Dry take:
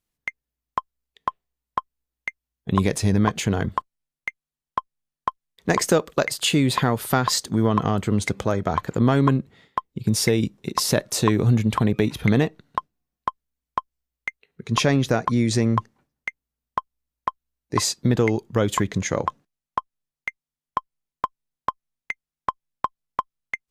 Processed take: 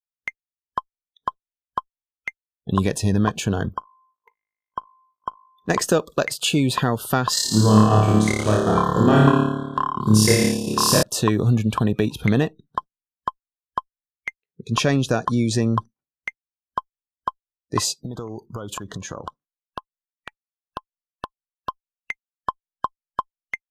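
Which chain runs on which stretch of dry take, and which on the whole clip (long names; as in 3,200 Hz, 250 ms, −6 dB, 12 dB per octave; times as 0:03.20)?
0:03.74–0:05.70: high-shelf EQ 4,500 Hz −3.5 dB + tuned comb filter 52 Hz, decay 1.9 s, mix 40%
0:07.34–0:11.03: flutter between parallel walls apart 4.8 metres, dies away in 1.5 s + transient designer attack 0 dB, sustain −12 dB
0:14.85–0:15.36: low-pass filter 11,000 Hz 24 dB per octave + high-shelf EQ 7,400 Hz +7 dB
0:18.04–0:21.69: parametric band 1,100 Hz +7.5 dB 0.86 octaves + downward compressor 12 to 1, threshold −27 dBFS
whole clip: noise reduction from a noise print of the clip's start 28 dB; notch filter 860 Hz, Q 19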